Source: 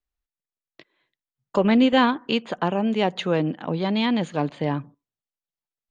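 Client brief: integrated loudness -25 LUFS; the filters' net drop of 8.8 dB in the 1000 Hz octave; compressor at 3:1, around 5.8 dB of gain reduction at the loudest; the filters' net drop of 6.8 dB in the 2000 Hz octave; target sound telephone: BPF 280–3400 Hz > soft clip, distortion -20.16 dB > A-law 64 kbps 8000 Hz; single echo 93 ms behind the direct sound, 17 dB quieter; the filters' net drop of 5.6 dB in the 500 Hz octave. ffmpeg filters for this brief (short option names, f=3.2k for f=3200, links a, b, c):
-af "equalizer=f=500:t=o:g=-3.5,equalizer=f=1k:t=o:g=-9,equalizer=f=2k:t=o:g=-5,acompressor=threshold=-23dB:ratio=3,highpass=280,lowpass=3.4k,aecho=1:1:93:0.141,asoftclip=threshold=-21dB,volume=8dB" -ar 8000 -c:a pcm_alaw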